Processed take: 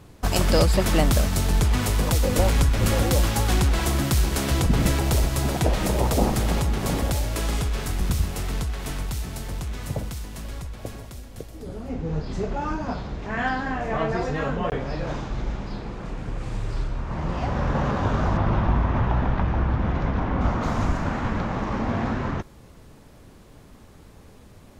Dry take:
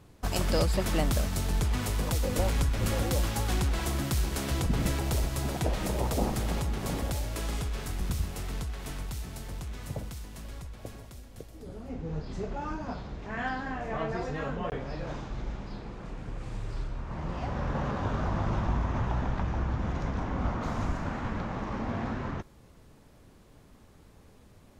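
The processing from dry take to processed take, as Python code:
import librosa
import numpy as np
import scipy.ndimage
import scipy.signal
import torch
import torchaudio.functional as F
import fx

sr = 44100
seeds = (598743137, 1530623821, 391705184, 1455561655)

y = fx.lowpass(x, sr, hz=3700.0, slope=12, at=(18.37, 20.41))
y = F.gain(torch.from_numpy(y), 7.5).numpy()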